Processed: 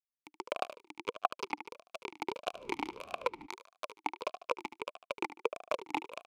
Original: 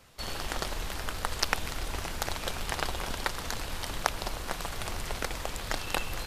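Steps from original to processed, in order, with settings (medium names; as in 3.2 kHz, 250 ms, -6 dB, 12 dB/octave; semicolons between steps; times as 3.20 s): reverb removal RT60 0.69 s; bit crusher 4-bit; on a send: feedback delay 74 ms, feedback 28%, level -16 dB; 2.53–3.45 s: on the sum: added noise brown -49 dBFS; compression 4:1, threshold -36 dBFS, peak gain reduction 13.5 dB; sine folder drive 7 dB, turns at -11.5 dBFS; talking filter a-u 1.6 Hz; trim +11 dB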